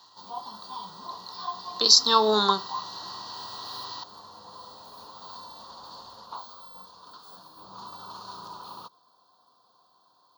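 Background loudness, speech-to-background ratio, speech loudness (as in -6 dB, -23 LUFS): -41.0 LUFS, 21.0 dB, -20.0 LUFS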